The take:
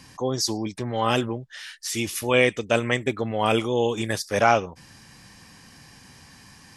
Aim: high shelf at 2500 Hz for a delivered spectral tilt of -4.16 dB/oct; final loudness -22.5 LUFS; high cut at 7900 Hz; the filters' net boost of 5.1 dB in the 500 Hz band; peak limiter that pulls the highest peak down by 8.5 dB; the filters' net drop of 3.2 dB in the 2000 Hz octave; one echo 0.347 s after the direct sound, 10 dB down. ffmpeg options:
-af "lowpass=7.9k,equalizer=f=500:t=o:g=6,equalizer=f=2k:t=o:g=-7.5,highshelf=f=2.5k:g=6,alimiter=limit=-12.5dB:level=0:latency=1,aecho=1:1:347:0.316,volume=2dB"

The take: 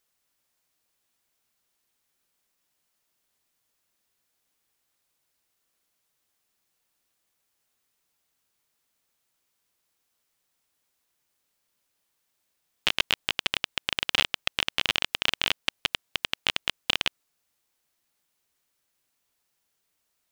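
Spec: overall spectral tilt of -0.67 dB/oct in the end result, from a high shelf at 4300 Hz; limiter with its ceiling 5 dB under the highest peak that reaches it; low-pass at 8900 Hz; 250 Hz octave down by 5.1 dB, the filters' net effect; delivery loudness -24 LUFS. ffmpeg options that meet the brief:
-af "lowpass=8.9k,equalizer=f=250:t=o:g=-7,highshelf=f=4.3k:g=-4,volume=8dB,alimiter=limit=-1.5dB:level=0:latency=1"

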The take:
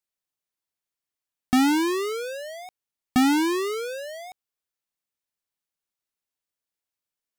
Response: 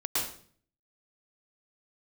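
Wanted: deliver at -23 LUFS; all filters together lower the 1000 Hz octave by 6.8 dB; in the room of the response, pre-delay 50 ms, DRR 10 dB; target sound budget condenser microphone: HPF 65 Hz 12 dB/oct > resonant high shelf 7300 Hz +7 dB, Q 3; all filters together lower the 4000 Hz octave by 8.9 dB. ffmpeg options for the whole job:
-filter_complex "[0:a]equalizer=f=1k:t=o:g=-8.5,equalizer=f=4k:t=o:g=-9,asplit=2[a][b];[1:a]atrim=start_sample=2205,adelay=50[c];[b][c]afir=irnorm=-1:irlink=0,volume=-17.5dB[d];[a][d]amix=inputs=2:normalize=0,highpass=65,highshelf=f=7.3k:t=q:w=3:g=7,volume=1.5dB"

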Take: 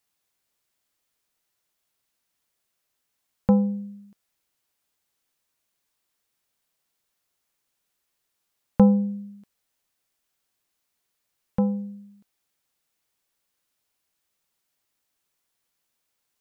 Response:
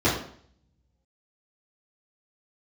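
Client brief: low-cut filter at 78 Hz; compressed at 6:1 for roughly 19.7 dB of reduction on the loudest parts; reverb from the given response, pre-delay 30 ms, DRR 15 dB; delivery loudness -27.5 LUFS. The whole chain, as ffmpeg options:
-filter_complex "[0:a]highpass=78,acompressor=threshold=-33dB:ratio=6,asplit=2[a][b];[1:a]atrim=start_sample=2205,adelay=30[c];[b][c]afir=irnorm=-1:irlink=0,volume=-31.5dB[d];[a][d]amix=inputs=2:normalize=0,volume=10.5dB"

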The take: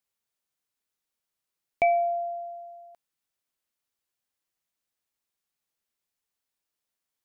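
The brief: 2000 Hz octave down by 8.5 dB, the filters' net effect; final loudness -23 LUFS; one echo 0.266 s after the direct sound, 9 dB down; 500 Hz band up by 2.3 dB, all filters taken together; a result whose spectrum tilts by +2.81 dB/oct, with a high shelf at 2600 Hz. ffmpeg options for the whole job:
-af "equalizer=f=500:t=o:g=6,equalizer=f=2k:t=o:g=-8.5,highshelf=f=2.6k:g=-3.5,aecho=1:1:266:0.355,volume=1dB"

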